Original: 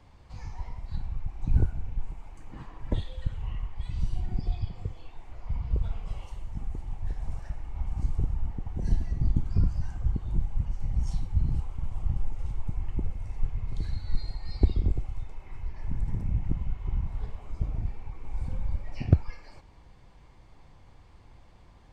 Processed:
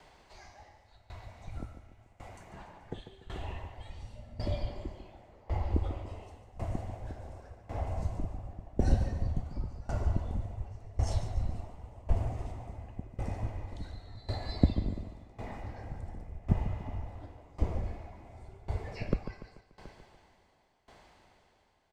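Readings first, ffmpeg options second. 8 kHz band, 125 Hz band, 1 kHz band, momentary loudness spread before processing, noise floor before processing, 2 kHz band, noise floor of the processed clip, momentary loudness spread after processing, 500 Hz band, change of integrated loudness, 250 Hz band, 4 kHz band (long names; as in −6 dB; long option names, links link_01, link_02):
can't be measured, −4.5 dB, +4.5 dB, 14 LU, −53 dBFS, +2.0 dB, −66 dBFS, 19 LU, +4.5 dB, −4.0 dB, −0.5 dB, +1.0 dB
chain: -filter_complex "[0:a]highpass=frequency=560:poles=1,acrossover=split=920[link_01][link_02];[link_01]dynaudnorm=framelen=540:gausssize=13:maxgain=12.5dB[link_03];[link_03][link_02]amix=inputs=2:normalize=0,afreqshift=-130,aecho=1:1:145|290|435|580|725|870|1015:0.355|0.206|0.119|0.0692|0.0402|0.0233|0.0135,aeval=exprs='val(0)*pow(10,-20*if(lt(mod(0.91*n/s,1),2*abs(0.91)/1000),1-mod(0.91*n/s,1)/(2*abs(0.91)/1000),(mod(0.91*n/s,1)-2*abs(0.91)/1000)/(1-2*abs(0.91)/1000))/20)':channel_layout=same,volume=7.5dB"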